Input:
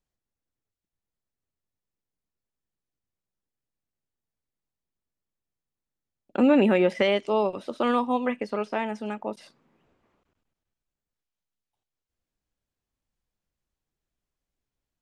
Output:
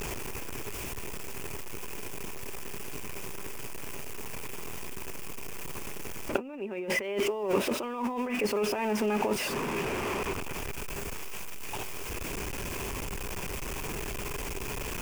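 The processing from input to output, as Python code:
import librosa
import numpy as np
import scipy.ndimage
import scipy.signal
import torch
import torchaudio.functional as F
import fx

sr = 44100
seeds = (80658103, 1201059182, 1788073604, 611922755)

y = x + 0.5 * 10.0 ** (-33.5 / 20.0) * np.sign(x)
y = fx.over_compress(y, sr, threshold_db=-32.0, ratio=-1.0)
y = fx.graphic_eq_31(y, sr, hz=(400, 1000, 2500, 4000), db=(10, 6, 9, -10))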